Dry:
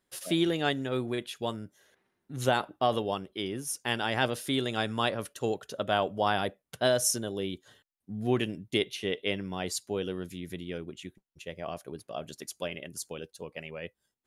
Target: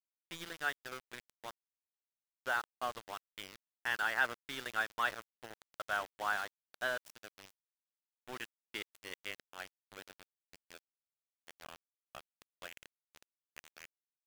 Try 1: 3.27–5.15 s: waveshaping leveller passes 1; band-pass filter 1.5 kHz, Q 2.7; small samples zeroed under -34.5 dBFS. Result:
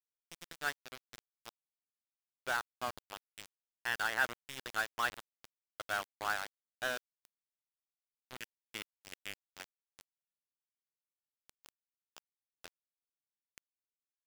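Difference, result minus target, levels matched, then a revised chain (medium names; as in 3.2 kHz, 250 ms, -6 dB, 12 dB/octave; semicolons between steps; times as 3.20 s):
small samples zeroed: distortion +5 dB
3.27–5.15 s: waveshaping leveller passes 1; band-pass filter 1.5 kHz, Q 2.7; small samples zeroed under -41 dBFS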